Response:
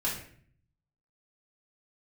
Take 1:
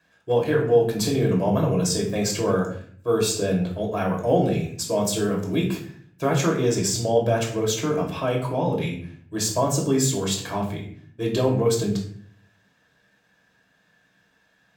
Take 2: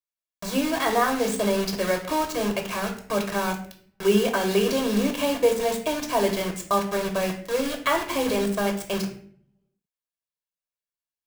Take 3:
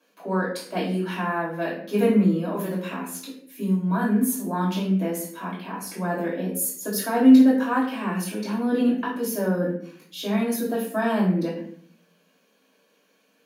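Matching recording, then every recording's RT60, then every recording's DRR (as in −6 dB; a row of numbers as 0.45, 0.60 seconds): 3; 0.55, 0.55, 0.55 seconds; −1.5, 3.0, −6.5 decibels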